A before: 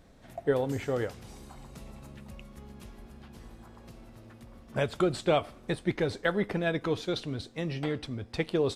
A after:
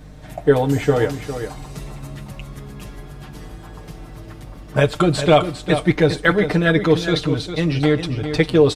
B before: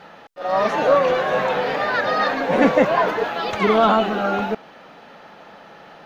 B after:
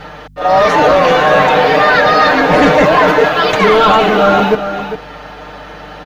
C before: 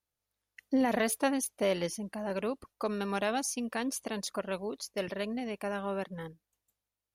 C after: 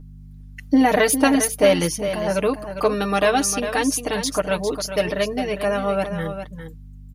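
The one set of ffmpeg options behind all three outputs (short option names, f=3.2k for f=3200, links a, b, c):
-filter_complex "[0:a]aeval=exprs='val(0)+0.00316*(sin(2*PI*50*n/s)+sin(2*PI*2*50*n/s)/2+sin(2*PI*3*50*n/s)/3+sin(2*PI*4*50*n/s)/4+sin(2*PI*5*50*n/s)/5)':c=same,aecho=1:1:6.6:0.79,apsyclip=14.5dB,asplit=2[a][b];[b]aecho=0:1:403:0.335[c];[a][c]amix=inputs=2:normalize=0,volume=-4dB"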